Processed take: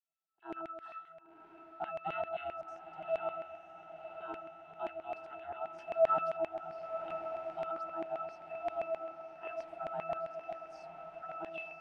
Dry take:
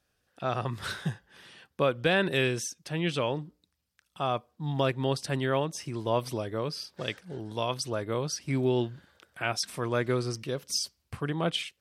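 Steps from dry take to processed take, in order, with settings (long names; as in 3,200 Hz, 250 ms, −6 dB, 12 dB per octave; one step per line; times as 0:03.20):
noise gate −51 dBFS, range −11 dB
low shelf with overshoot 320 Hz −10.5 dB, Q 3
0:05.78–0:06.37: leveller curve on the samples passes 3
ring modulation 310 Hz
resonances in every octave E, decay 0.7 s
0:02.61–0:03.09: all-pass dispersion highs, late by 70 ms, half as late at 660 Hz
auto-filter high-pass saw down 7.6 Hz 530–2,400 Hz
feedback delay with all-pass diffusion 993 ms, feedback 65%, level −10 dB
0:07.11–0:07.79: multiband upward and downward compressor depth 70%
level +13.5 dB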